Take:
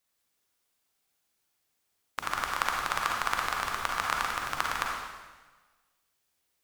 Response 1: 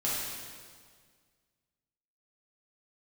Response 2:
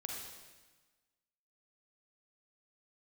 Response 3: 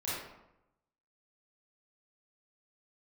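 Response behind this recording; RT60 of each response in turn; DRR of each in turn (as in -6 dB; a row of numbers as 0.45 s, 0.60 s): 2; 1.8 s, 1.3 s, 0.85 s; -8.5 dB, -1.0 dB, -10.0 dB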